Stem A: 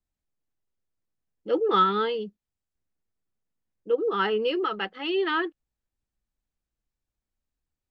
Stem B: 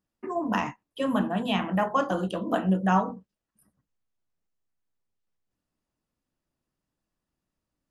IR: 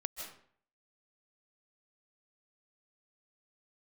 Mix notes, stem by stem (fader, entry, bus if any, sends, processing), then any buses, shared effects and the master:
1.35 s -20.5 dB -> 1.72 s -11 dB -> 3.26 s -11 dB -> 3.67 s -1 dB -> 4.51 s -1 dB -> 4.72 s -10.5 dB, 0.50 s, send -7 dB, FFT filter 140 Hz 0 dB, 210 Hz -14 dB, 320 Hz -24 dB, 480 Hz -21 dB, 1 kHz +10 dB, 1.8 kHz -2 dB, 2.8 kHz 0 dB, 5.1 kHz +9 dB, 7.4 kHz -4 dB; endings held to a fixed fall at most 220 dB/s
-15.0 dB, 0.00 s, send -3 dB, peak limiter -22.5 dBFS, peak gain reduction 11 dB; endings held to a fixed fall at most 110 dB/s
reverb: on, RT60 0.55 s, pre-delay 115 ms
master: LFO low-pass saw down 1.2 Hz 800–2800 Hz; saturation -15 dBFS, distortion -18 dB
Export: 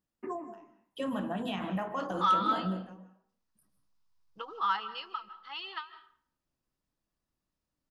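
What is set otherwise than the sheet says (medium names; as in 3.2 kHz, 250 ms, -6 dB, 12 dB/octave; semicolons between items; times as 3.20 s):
stem B -15.0 dB -> -7.5 dB; master: missing LFO low-pass saw down 1.2 Hz 800–2800 Hz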